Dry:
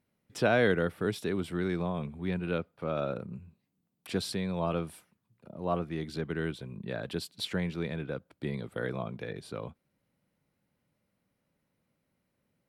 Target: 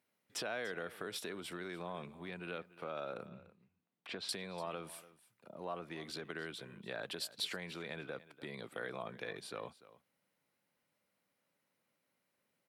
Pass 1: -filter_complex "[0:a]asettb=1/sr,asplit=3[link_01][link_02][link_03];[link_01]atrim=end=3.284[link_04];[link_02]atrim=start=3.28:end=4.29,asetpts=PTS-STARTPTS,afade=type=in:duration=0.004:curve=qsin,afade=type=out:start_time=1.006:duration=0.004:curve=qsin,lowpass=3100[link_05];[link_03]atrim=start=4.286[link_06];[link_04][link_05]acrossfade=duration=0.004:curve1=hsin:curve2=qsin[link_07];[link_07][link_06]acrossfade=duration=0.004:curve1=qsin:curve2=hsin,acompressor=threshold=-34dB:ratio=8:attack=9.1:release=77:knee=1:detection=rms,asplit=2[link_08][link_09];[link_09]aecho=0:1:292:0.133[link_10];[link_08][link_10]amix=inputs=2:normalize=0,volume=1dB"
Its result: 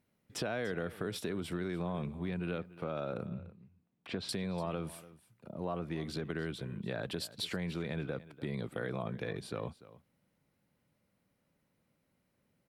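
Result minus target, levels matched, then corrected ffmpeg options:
1,000 Hz band −3.0 dB
-filter_complex "[0:a]asettb=1/sr,asplit=3[link_01][link_02][link_03];[link_01]atrim=end=3.284[link_04];[link_02]atrim=start=3.28:end=4.29,asetpts=PTS-STARTPTS,afade=type=in:duration=0.004:curve=qsin,afade=type=out:start_time=1.006:duration=0.004:curve=qsin,lowpass=3100[link_05];[link_03]atrim=start=4.286[link_06];[link_04][link_05]acrossfade=duration=0.004:curve1=hsin:curve2=qsin[link_07];[link_07][link_06]acrossfade=duration=0.004:curve1=qsin:curve2=hsin,acompressor=threshold=-34dB:ratio=8:attack=9.1:release=77:knee=1:detection=rms,highpass=frequency=750:poles=1,asplit=2[link_08][link_09];[link_09]aecho=0:1:292:0.133[link_10];[link_08][link_10]amix=inputs=2:normalize=0,volume=1dB"

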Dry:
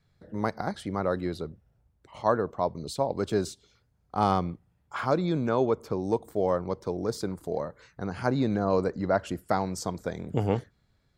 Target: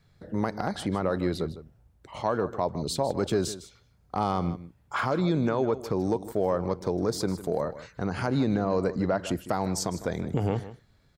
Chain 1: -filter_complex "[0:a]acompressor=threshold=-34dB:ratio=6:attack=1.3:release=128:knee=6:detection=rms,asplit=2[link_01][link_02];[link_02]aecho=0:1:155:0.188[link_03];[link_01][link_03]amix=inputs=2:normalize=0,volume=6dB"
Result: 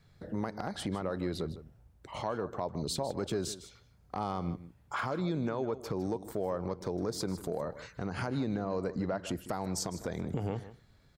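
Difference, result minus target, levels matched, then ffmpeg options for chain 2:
downward compressor: peak gain reduction +8 dB
-filter_complex "[0:a]acompressor=threshold=-24.5dB:ratio=6:attack=1.3:release=128:knee=6:detection=rms,asplit=2[link_01][link_02];[link_02]aecho=0:1:155:0.188[link_03];[link_01][link_03]amix=inputs=2:normalize=0,volume=6dB"

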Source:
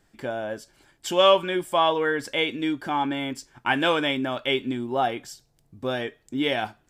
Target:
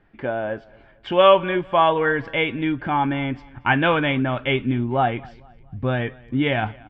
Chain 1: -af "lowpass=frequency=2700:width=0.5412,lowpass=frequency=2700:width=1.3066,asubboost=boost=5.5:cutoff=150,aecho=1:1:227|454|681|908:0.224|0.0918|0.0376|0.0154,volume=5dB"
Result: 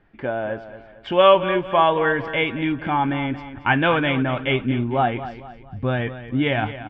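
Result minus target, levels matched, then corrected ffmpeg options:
echo-to-direct +11 dB
-af "lowpass=frequency=2700:width=0.5412,lowpass=frequency=2700:width=1.3066,asubboost=boost=5.5:cutoff=150,aecho=1:1:227|454|681:0.0631|0.0259|0.0106,volume=5dB"

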